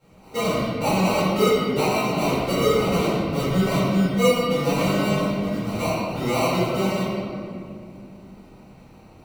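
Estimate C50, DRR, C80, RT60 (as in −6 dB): −4.0 dB, −14.5 dB, −1.0 dB, 2.4 s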